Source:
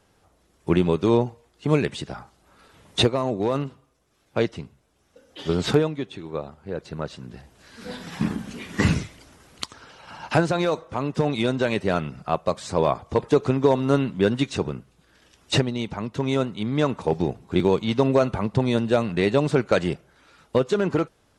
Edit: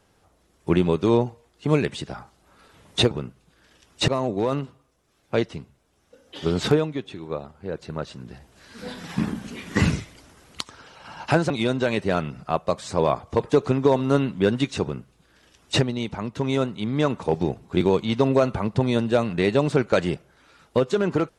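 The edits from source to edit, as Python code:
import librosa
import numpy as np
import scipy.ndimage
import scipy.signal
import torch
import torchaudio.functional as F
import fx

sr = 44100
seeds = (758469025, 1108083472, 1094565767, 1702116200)

y = fx.edit(x, sr, fx.cut(start_s=10.53, length_s=0.76),
    fx.duplicate(start_s=14.62, length_s=0.97, to_s=3.11), tone=tone)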